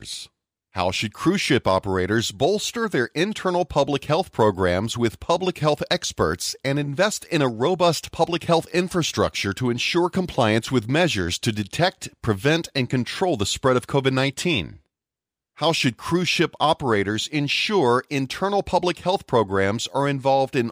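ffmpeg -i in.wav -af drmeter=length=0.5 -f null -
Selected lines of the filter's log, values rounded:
Channel 1: DR: 10.4
Overall DR: 10.4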